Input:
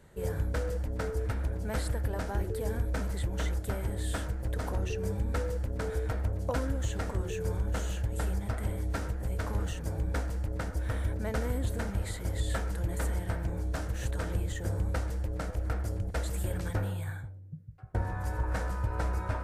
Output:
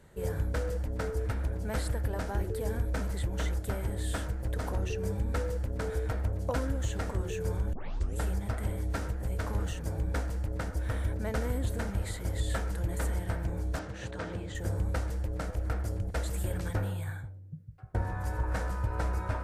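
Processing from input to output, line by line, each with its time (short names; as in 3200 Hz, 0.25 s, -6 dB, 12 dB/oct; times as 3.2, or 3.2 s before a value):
7.73 tape start 0.44 s
13.79–14.55 BPF 120–5100 Hz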